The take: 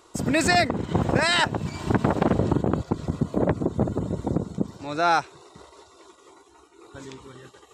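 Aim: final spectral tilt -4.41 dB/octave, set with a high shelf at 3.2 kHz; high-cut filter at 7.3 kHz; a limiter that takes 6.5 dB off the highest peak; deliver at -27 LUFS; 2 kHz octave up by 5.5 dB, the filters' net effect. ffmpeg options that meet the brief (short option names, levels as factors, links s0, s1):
-af "lowpass=7300,equalizer=f=2000:t=o:g=8,highshelf=f=3200:g=-4.5,volume=0.75,alimiter=limit=0.211:level=0:latency=1"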